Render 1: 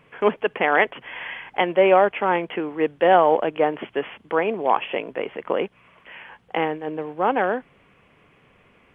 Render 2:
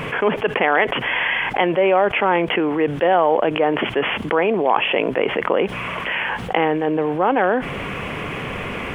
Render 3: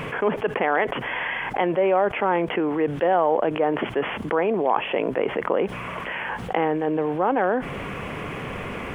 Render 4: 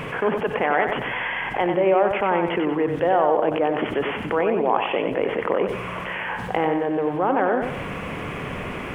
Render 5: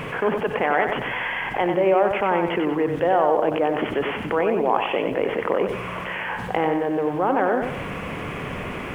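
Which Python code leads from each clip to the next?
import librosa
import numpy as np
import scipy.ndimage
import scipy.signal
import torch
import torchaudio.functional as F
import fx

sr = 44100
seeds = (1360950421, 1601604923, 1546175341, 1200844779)

y1 = fx.env_flatten(x, sr, amount_pct=70)
y1 = y1 * librosa.db_to_amplitude(-2.0)
y2 = fx.dynamic_eq(y1, sr, hz=2900.0, q=1.1, threshold_db=-35.0, ratio=4.0, max_db=-7)
y2 = y2 * librosa.db_to_amplitude(-3.5)
y3 = fx.echo_feedback(y2, sr, ms=94, feedback_pct=40, wet_db=-6.0)
y4 = fx.dmg_noise_colour(y3, sr, seeds[0], colour='pink', level_db=-59.0)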